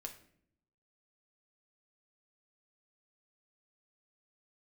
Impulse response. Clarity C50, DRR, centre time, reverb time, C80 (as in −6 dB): 11.0 dB, 3.0 dB, 12 ms, 0.65 s, 14.5 dB